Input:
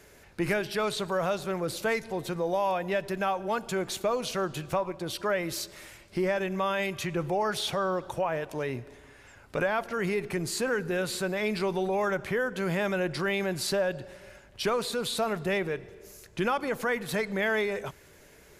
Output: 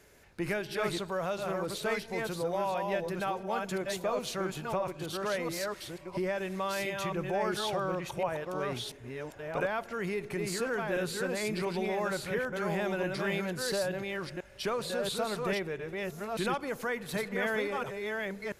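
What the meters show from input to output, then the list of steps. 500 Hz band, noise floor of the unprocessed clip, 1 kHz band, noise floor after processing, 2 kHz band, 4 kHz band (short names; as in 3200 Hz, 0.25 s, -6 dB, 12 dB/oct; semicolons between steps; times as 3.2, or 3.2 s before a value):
-3.0 dB, -55 dBFS, -3.5 dB, -50 dBFS, -3.5 dB, -3.0 dB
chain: reverse delay 0.686 s, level -3 dB; gain -5 dB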